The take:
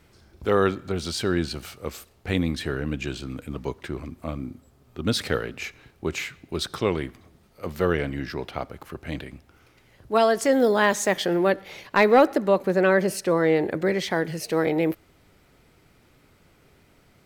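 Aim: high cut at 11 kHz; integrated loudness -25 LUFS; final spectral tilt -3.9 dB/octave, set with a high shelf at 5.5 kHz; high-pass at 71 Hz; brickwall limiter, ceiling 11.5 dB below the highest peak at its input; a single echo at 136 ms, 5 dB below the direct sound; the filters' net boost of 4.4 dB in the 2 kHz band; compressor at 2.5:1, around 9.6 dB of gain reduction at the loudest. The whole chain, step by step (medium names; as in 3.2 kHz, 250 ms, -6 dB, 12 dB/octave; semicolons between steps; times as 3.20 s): high-pass 71 Hz; low-pass 11 kHz; peaking EQ 2 kHz +4.5 dB; treble shelf 5.5 kHz +7.5 dB; compression 2.5:1, threshold -25 dBFS; peak limiter -18.5 dBFS; delay 136 ms -5 dB; trim +5 dB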